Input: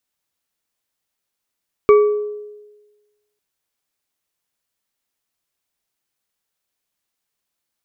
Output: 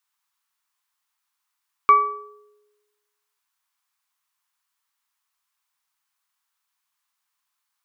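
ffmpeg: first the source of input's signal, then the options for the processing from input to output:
-f lavfi -i "aevalsrc='0.562*pow(10,-3*t/1.23)*sin(2*PI*418*t)+0.2*pow(10,-3*t/0.605)*sin(2*PI*1152.4*t)+0.0708*pow(10,-3*t/0.378)*sin(2*PI*2258.9*t)':d=1.5:s=44100"
-af "lowshelf=f=700:t=q:w=3:g=-13.5"

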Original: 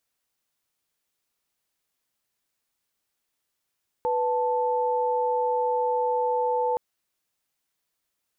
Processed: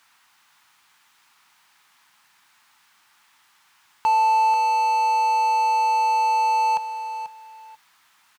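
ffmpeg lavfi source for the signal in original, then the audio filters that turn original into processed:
-f lavfi -i "aevalsrc='0.0596*(sin(2*PI*493.88*t)+sin(2*PI*880*t))':d=2.72:s=44100"
-filter_complex "[0:a]firequalizer=gain_entry='entry(160,0);entry(520,-17);entry(870,5)':delay=0.05:min_phase=1,asplit=2[a][b];[b]highpass=f=720:p=1,volume=34dB,asoftclip=type=tanh:threshold=-10.5dB[c];[a][c]amix=inputs=2:normalize=0,lowpass=f=1.1k:p=1,volume=-6dB,aecho=1:1:488|976:0.282|0.0507"

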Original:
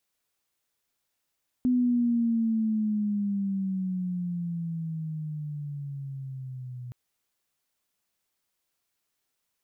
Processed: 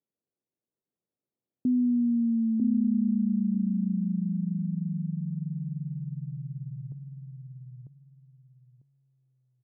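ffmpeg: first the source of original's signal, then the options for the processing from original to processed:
-f lavfi -i "aevalsrc='pow(10,(-20-16*t/5.27)/20)*sin(2*PI*252*5.27/(-12.5*log(2)/12)*(exp(-12.5*log(2)/12*t/5.27)-1))':d=5.27:s=44100"
-filter_complex "[0:a]asuperpass=centerf=240:order=4:qfactor=0.66,asplit=2[a][b];[b]aecho=0:1:947|1894|2841:0.631|0.139|0.0305[c];[a][c]amix=inputs=2:normalize=0"

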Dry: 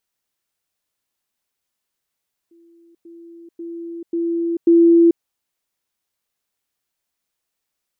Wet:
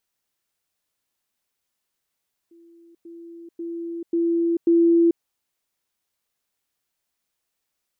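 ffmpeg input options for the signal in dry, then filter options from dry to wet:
-f lavfi -i "aevalsrc='pow(10,(-48+10*floor(t/0.54))/20)*sin(2*PI*337*t)*clip(min(mod(t,0.54),0.44-mod(t,0.54))/0.005,0,1)':d=2.7:s=44100"
-af "alimiter=limit=-13dB:level=0:latency=1:release=42"

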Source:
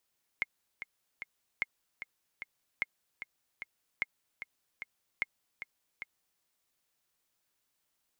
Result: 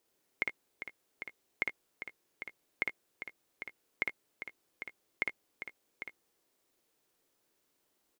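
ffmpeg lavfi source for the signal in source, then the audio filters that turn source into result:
-f lavfi -i "aevalsrc='pow(10,(-17-10.5*gte(mod(t,3*60/150),60/150))/20)*sin(2*PI*2140*mod(t,60/150))*exp(-6.91*mod(t,60/150)/0.03)':d=6:s=44100"
-af "equalizer=f=380:t=o:w=1.6:g=12.5,aecho=1:1:56|74:0.631|0.158"

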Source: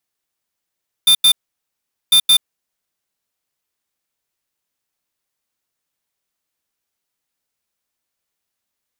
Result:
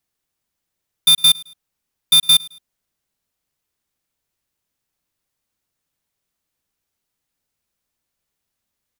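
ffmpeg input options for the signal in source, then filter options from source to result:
-f lavfi -i "aevalsrc='0.316*(2*lt(mod(3580*t,1),0.5)-1)*clip(min(mod(mod(t,1.05),0.17),0.08-mod(mod(t,1.05),0.17))/0.005,0,1)*lt(mod(t,1.05),0.34)':d=2.1:s=44100"
-af "lowshelf=f=240:g=9.5,aecho=1:1:107|214:0.0708|0.0241"

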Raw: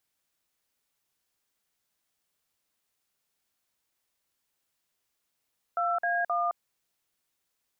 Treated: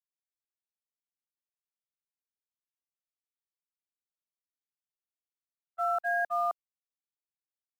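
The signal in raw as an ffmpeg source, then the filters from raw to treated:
-f lavfi -i "aevalsrc='0.0422*clip(min(mod(t,0.263),0.215-mod(t,0.263))/0.002,0,1)*(eq(floor(t/0.263),0)*(sin(2*PI*697*mod(t,0.263))+sin(2*PI*1336*mod(t,0.263)))+eq(floor(t/0.263),1)*(sin(2*PI*697*mod(t,0.263))+sin(2*PI*1633*mod(t,0.263)))+eq(floor(t/0.263),2)*(sin(2*PI*697*mod(t,0.263))+sin(2*PI*1209*mod(t,0.263))))':d=0.789:s=44100"
-filter_complex "[0:a]agate=range=-42dB:threshold=-28dB:ratio=16:detection=peak,acrossover=split=620|910[a][b][c];[a]acrusher=bits=4:mode=log:mix=0:aa=0.000001[d];[d][b][c]amix=inputs=3:normalize=0"

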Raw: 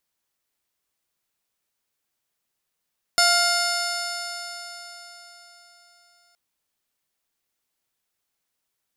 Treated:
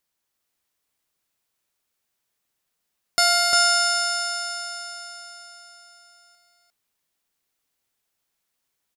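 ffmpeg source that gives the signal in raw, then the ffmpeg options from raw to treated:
-f lavfi -i "aevalsrc='0.0794*pow(10,-3*t/4.18)*sin(2*PI*697.22*t)+0.0944*pow(10,-3*t/4.18)*sin(2*PI*1401.71*t)+0.0501*pow(10,-3*t/4.18)*sin(2*PI*2120.63*t)+0.0188*pow(10,-3*t/4.18)*sin(2*PI*2860.89*t)+0.0299*pow(10,-3*t/4.18)*sin(2*PI*3629.06*t)+0.0708*pow(10,-3*t/4.18)*sin(2*PI*4431.29*t)+0.112*pow(10,-3*t/4.18)*sin(2*PI*5273.25*t)+0.0188*pow(10,-3*t/4.18)*sin(2*PI*6160.13*t)+0.0501*pow(10,-3*t/4.18)*sin(2*PI*7096.59*t)+0.01*pow(10,-3*t/4.18)*sin(2*PI*8086.79*t)+0.0398*pow(10,-3*t/4.18)*sin(2*PI*9134.41*t)+0.0224*pow(10,-3*t/4.18)*sin(2*PI*10242.7*t)+0.015*pow(10,-3*t/4.18)*sin(2*PI*11414.47*t)':d=3.17:s=44100"
-af "aecho=1:1:351:0.708"

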